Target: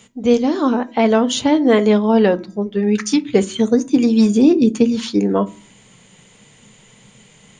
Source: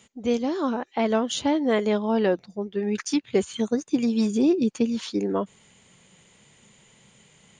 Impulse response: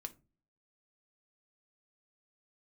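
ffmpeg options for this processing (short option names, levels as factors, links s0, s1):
-filter_complex "[0:a]bandreject=f=322.4:t=h:w=4,bandreject=f=644.8:t=h:w=4,bandreject=f=967.2:t=h:w=4,bandreject=f=1289.6:t=h:w=4,bandreject=f=1612:t=h:w=4,bandreject=f=1934.4:t=h:w=4,asplit=2[s0][s1];[1:a]atrim=start_sample=2205,lowshelf=f=220:g=4[s2];[s1][s2]afir=irnorm=-1:irlink=0,volume=2.24[s3];[s0][s3]amix=inputs=2:normalize=0"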